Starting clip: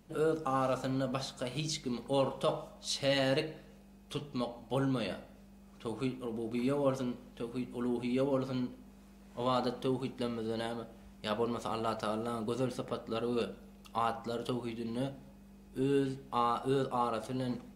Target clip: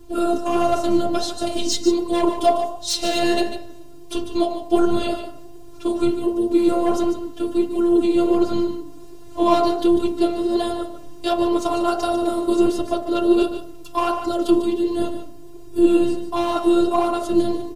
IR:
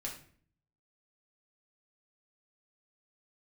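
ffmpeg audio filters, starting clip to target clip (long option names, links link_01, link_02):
-filter_complex "[0:a]equalizer=frequency=2000:width_type=o:width=0.78:gain=-10.5,aecho=1:1:5.1:0.91,bandreject=frequency=47.17:width_type=h:width=4,bandreject=frequency=94.34:width_type=h:width=4,bandreject=frequency=141.51:width_type=h:width=4,bandreject=frequency=188.68:width_type=h:width=4,bandreject=frequency=235.85:width_type=h:width=4,bandreject=frequency=283.02:width_type=h:width=4,bandreject=frequency=330.19:width_type=h:width=4,bandreject=frequency=377.36:width_type=h:width=4,bandreject=frequency=424.53:width_type=h:width=4,bandreject=frequency=471.7:width_type=h:width=4,bandreject=frequency=518.87:width_type=h:width=4,bandreject=frequency=566.04:width_type=h:width=4,bandreject=frequency=613.21:width_type=h:width=4,bandreject=frequency=660.38:width_type=h:width=4,bandreject=frequency=707.55:width_type=h:width=4,bandreject=frequency=754.72:width_type=h:width=4,bandreject=frequency=801.89:width_type=h:width=4,bandreject=frequency=849.06:width_type=h:width=4,bandreject=frequency=896.23:width_type=h:width=4,bandreject=frequency=943.4:width_type=h:width=4,bandreject=frequency=990.57:width_type=h:width=4,bandreject=frequency=1037.74:width_type=h:width=4,bandreject=frequency=1084.91:width_type=h:width=4,bandreject=frequency=1132.08:width_type=h:width=4,bandreject=frequency=1179.25:width_type=h:width=4,bandreject=frequency=1226.42:width_type=h:width=4,bandreject=frequency=1273.59:width_type=h:width=4,bandreject=frequency=1320.76:width_type=h:width=4,bandreject=frequency=1367.93:width_type=h:width=4,bandreject=frequency=1415.1:width_type=h:width=4,bandreject=frequency=1462.27:width_type=h:width=4,bandreject=frequency=1509.44:width_type=h:width=4,acrossover=split=520[link_01][link_02];[link_01]acontrast=64[link_03];[link_02]asoftclip=type=hard:threshold=-28.5dB[link_04];[link_03][link_04]amix=inputs=2:normalize=0,apsyclip=22dB,afftfilt=real='hypot(re,im)*cos(PI*b)':imag='0':win_size=512:overlap=0.75,flanger=delay=0.5:depth=6.7:regen=64:speed=1.4:shape=sinusoidal,asplit=2[link_05][link_06];[link_06]aecho=0:1:147:0.316[link_07];[link_05][link_07]amix=inputs=2:normalize=0,volume=-2.5dB"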